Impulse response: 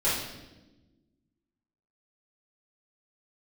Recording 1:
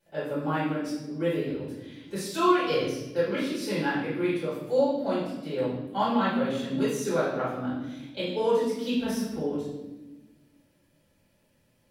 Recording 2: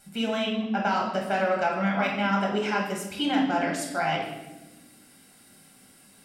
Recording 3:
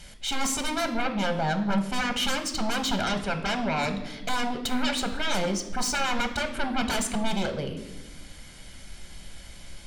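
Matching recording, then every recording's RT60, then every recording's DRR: 1; 1.1 s, 1.1 s, 1.1 s; -12.0 dB, -2.5 dB, 6.0 dB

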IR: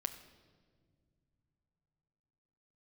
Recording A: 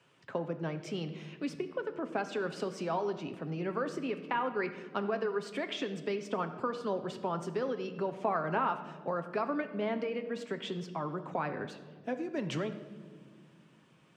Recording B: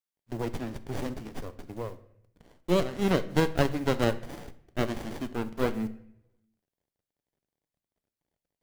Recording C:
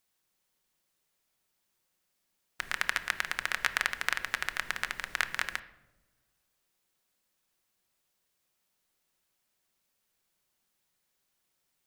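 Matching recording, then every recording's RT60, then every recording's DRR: A; no single decay rate, 0.75 s, no single decay rate; 7.0 dB, 11.5 dB, 9.0 dB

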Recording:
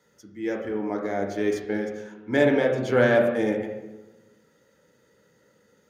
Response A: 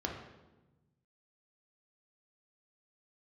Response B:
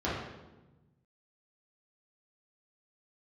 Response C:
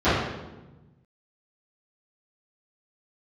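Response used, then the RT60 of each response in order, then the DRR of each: A; 1.1 s, 1.1 s, 1.1 s; 0.0 dB, -9.0 dB, -18.0 dB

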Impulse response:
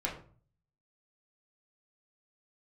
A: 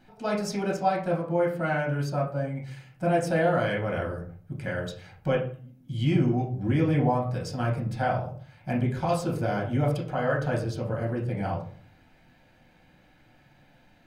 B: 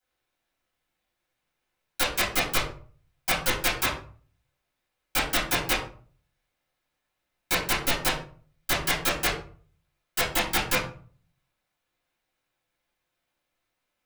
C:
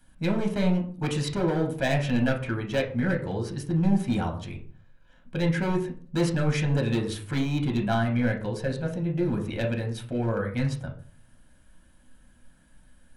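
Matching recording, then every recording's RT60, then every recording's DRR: A; 0.45 s, 0.45 s, 0.45 s; -3.5 dB, -12.5 dB, 1.5 dB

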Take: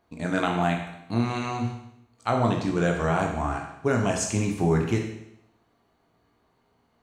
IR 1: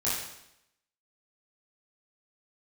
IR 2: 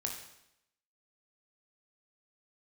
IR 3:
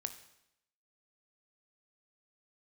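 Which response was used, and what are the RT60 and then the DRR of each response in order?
2; 0.80 s, 0.80 s, 0.80 s; -9.0 dB, 1.0 dB, 8.5 dB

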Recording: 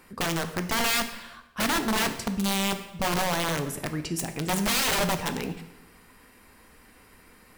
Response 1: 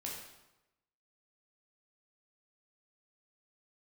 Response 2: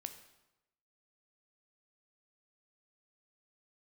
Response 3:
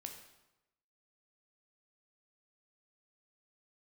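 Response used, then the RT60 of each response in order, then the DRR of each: 2; 0.95 s, 0.95 s, 0.95 s; -3.5 dB, 7.5 dB, 3.5 dB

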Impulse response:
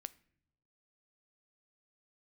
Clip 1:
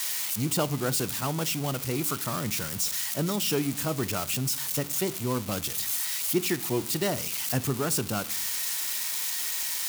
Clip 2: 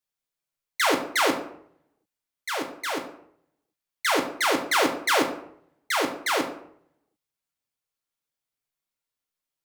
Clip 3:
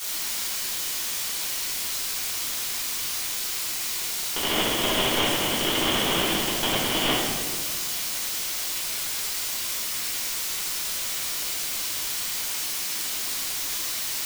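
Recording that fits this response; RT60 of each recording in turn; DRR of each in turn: 1; no single decay rate, 0.65 s, 1.7 s; 15.5 dB, 2.0 dB, -12.5 dB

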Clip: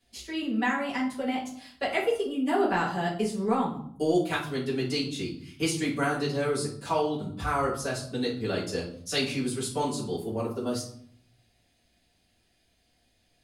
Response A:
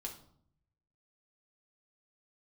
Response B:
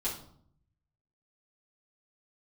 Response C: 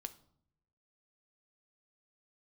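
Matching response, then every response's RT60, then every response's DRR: B; 0.65 s, 0.60 s, 0.65 s; -0.5 dB, -9.0 dB, 9.0 dB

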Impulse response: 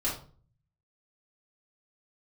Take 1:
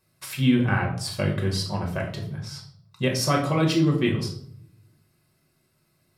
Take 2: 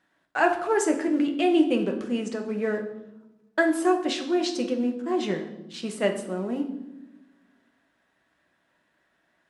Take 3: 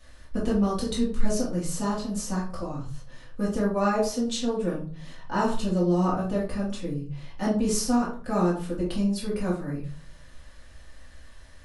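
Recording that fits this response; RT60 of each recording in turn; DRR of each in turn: 3; 0.60 s, 0.95 s, 0.40 s; 0.0 dB, 3.0 dB, -7.0 dB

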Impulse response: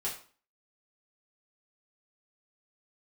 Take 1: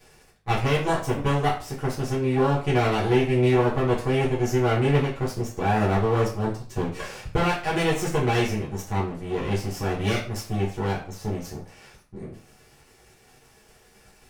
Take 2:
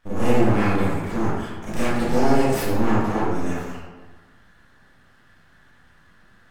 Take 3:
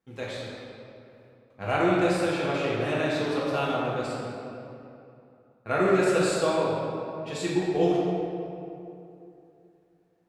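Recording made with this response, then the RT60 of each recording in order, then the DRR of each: 1; 0.40 s, 1.3 s, 2.8 s; -7.5 dB, -11.5 dB, -7.5 dB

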